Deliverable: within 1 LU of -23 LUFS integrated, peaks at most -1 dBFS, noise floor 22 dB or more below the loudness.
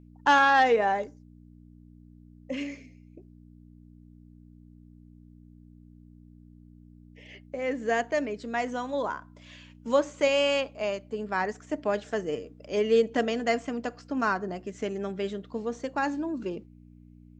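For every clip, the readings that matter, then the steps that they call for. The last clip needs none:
hum 60 Hz; harmonics up to 300 Hz; hum level -50 dBFS; loudness -28.0 LUFS; peak -9.5 dBFS; loudness target -23.0 LUFS
-> de-hum 60 Hz, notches 5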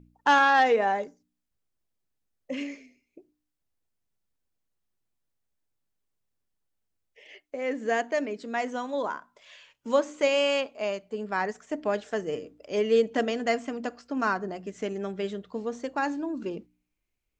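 hum none; loudness -28.0 LUFS; peak -9.0 dBFS; loudness target -23.0 LUFS
-> gain +5 dB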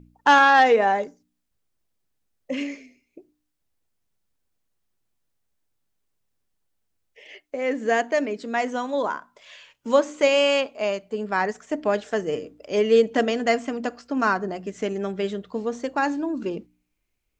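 loudness -23.0 LUFS; peak -4.0 dBFS; noise floor -76 dBFS

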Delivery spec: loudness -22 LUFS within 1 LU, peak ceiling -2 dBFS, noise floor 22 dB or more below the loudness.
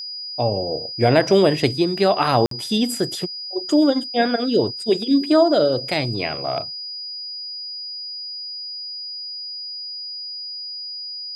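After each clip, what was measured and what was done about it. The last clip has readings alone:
dropouts 1; longest dropout 53 ms; steady tone 4900 Hz; tone level -29 dBFS; loudness -21.5 LUFS; peak -1.0 dBFS; loudness target -22.0 LUFS
-> interpolate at 2.46, 53 ms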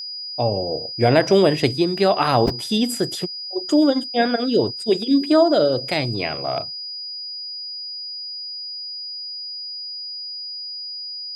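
dropouts 0; steady tone 4900 Hz; tone level -29 dBFS
-> notch 4900 Hz, Q 30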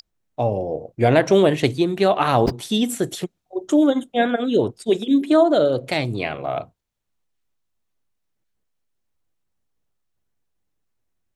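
steady tone none; loudness -20.0 LUFS; peak -1.5 dBFS; loudness target -22.0 LUFS
-> gain -2 dB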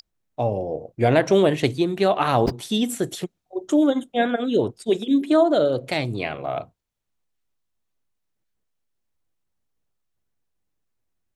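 loudness -22.0 LUFS; peak -3.5 dBFS; noise floor -77 dBFS

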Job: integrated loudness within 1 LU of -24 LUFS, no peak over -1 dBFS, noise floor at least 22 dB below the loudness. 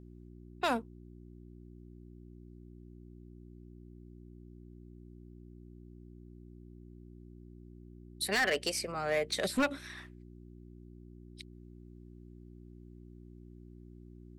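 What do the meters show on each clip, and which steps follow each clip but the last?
clipped 0.3%; flat tops at -24.0 dBFS; hum 60 Hz; harmonics up to 360 Hz; hum level -50 dBFS; loudness -33.0 LUFS; peak -24.0 dBFS; loudness target -24.0 LUFS
-> clip repair -24 dBFS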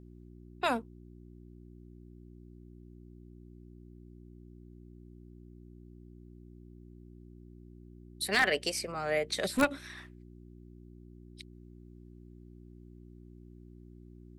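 clipped 0.0%; hum 60 Hz; harmonics up to 360 Hz; hum level -50 dBFS
-> de-hum 60 Hz, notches 6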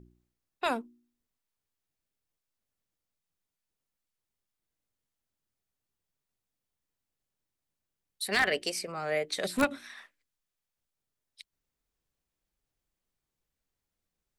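hum none; loudness -31.0 LUFS; peak -14.5 dBFS; loudness target -24.0 LUFS
-> gain +7 dB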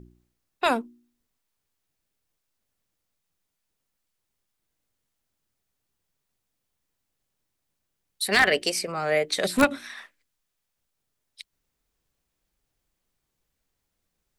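loudness -24.0 LUFS; peak -7.5 dBFS; noise floor -80 dBFS

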